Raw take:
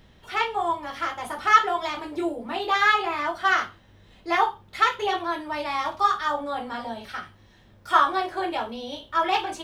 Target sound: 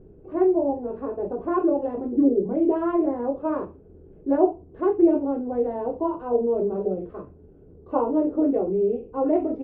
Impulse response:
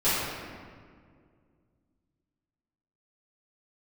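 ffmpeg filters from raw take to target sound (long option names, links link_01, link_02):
-af "lowpass=frequency=490:width_type=q:width=4.9,asetrate=36028,aresample=44100,atempo=1.22405,volume=3.5dB"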